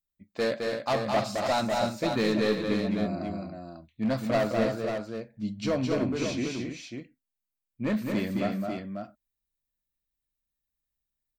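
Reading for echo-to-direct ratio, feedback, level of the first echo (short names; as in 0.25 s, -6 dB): -1.0 dB, no steady repeat, -4.0 dB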